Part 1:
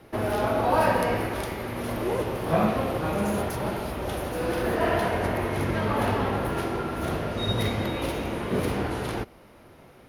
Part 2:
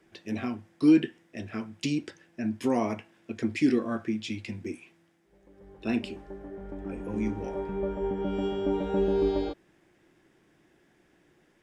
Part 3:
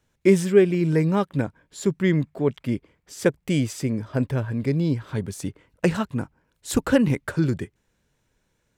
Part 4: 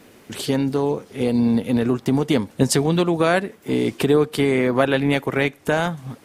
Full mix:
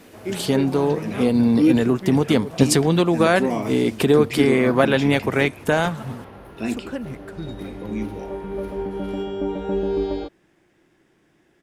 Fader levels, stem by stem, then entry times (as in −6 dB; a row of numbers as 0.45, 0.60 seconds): −15.5, +2.5, −12.0, +1.0 decibels; 0.00, 0.75, 0.00, 0.00 seconds